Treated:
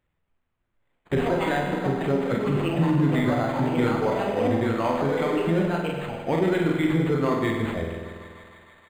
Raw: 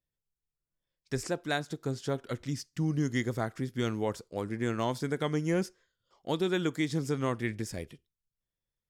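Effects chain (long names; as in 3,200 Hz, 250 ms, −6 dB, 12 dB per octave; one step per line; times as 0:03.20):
stylus tracing distortion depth 0.022 ms
delay with pitch and tempo change per echo 280 ms, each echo +5 semitones, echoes 3, each echo −6 dB
double-tracking delay 36 ms −4 dB
on a send: feedback echo with a high-pass in the loop 155 ms, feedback 79%, high-pass 300 Hz, level −14.5 dB
on the sum: brickwall limiter −21.5 dBFS, peak gain reduction 6.5 dB
reverb reduction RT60 1.5 s
in parallel at +2 dB: downward compressor, threshold −43 dBFS, peak gain reduction 15 dB
on the sum: notch filter 1,700 Hz, Q 25
spring reverb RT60 1.8 s, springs 48 ms, chirp 40 ms, DRR 1 dB
linearly interpolated sample-rate reduction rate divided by 8×
level +6 dB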